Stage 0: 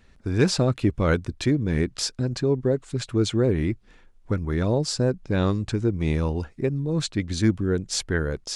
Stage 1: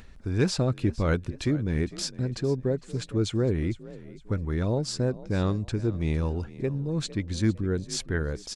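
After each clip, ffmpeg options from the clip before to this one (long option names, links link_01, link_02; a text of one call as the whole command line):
ffmpeg -i in.wav -filter_complex "[0:a]asplit=4[link_01][link_02][link_03][link_04];[link_02]adelay=456,afreqshift=42,volume=-18dB[link_05];[link_03]adelay=912,afreqshift=84,volume=-27.1dB[link_06];[link_04]adelay=1368,afreqshift=126,volume=-36.2dB[link_07];[link_01][link_05][link_06][link_07]amix=inputs=4:normalize=0,acompressor=mode=upward:threshold=-38dB:ratio=2.5,lowshelf=frequency=100:gain=5.5,volume=-5dB" out.wav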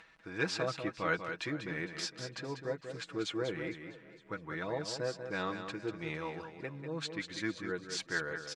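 ffmpeg -i in.wav -af "bandpass=frequency=1700:width_type=q:width=0.83:csg=0,aecho=1:1:6.2:0.61,aecho=1:1:192:0.398" out.wav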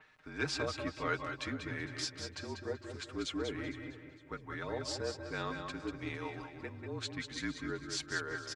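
ffmpeg -i in.wav -filter_complex "[0:a]afreqshift=-40,asplit=2[link_01][link_02];[link_02]adelay=188,lowpass=frequency=3500:poles=1,volume=-8dB,asplit=2[link_03][link_04];[link_04]adelay=188,lowpass=frequency=3500:poles=1,volume=0.38,asplit=2[link_05][link_06];[link_06]adelay=188,lowpass=frequency=3500:poles=1,volume=0.38,asplit=2[link_07][link_08];[link_08]adelay=188,lowpass=frequency=3500:poles=1,volume=0.38[link_09];[link_01][link_03][link_05][link_07][link_09]amix=inputs=5:normalize=0,adynamicequalizer=threshold=0.00282:dfrequency=3900:dqfactor=0.7:tfrequency=3900:tqfactor=0.7:attack=5:release=100:ratio=0.375:range=2:mode=boostabove:tftype=highshelf,volume=-2.5dB" out.wav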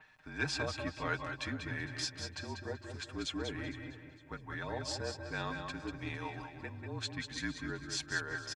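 ffmpeg -i in.wav -af "aecho=1:1:1.2:0.38" out.wav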